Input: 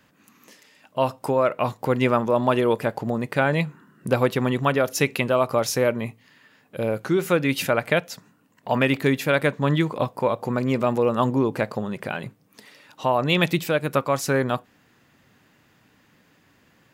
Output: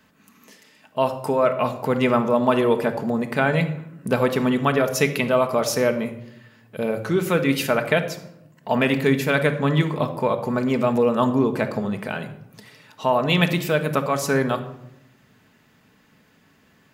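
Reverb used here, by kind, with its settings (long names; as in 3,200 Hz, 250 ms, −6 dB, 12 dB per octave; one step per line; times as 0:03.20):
rectangular room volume 2,400 cubic metres, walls furnished, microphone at 1.5 metres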